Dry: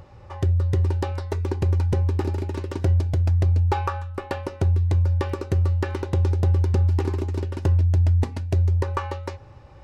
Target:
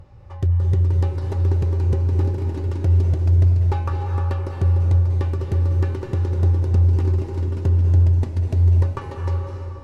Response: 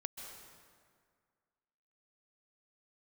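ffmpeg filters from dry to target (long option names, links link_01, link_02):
-filter_complex "[0:a]lowshelf=frequency=190:gain=10[link_01];[1:a]atrim=start_sample=2205,asetrate=29547,aresample=44100[link_02];[link_01][link_02]afir=irnorm=-1:irlink=0,volume=-4.5dB"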